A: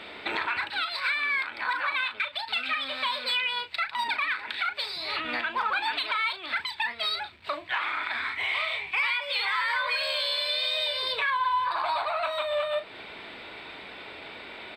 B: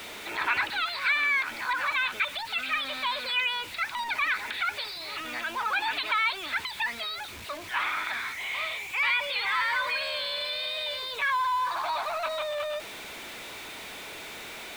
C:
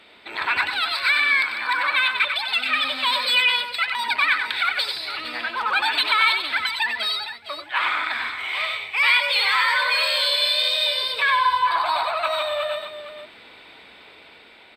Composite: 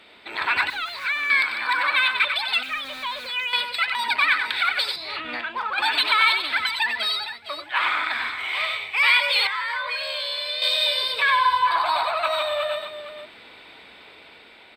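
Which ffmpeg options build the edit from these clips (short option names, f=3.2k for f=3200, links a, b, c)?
-filter_complex "[1:a]asplit=2[a][b];[0:a]asplit=2[c][d];[2:a]asplit=5[e][f][g][h][i];[e]atrim=end=0.702[j];[a]atrim=start=0.698:end=1.302[k];[f]atrim=start=1.298:end=2.632[l];[b]atrim=start=2.628:end=3.532[m];[g]atrim=start=3.528:end=4.962[n];[c]atrim=start=4.958:end=5.782[o];[h]atrim=start=5.778:end=9.472[p];[d]atrim=start=9.468:end=10.622[q];[i]atrim=start=10.618[r];[j][k]acrossfade=d=0.004:c1=hsin:c2=hsin[s];[s][l]acrossfade=d=0.004:c1=hsin:c2=hsin[t];[t][m]acrossfade=d=0.004:c1=hsin:c2=hsin[u];[u][n]acrossfade=d=0.004:c1=hsin:c2=hsin[v];[v][o]acrossfade=d=0.004:c1=hsin:c2=hsin[w];[w][p]acrossfade=d=0.004:c1=hsin:c2=hsin[x];[x][q]acrossfade=d=0.004:c1=hsin:c2=hsin[y];[y][r]acrossfade=d=0.004:c1=hsin:c2=hsin"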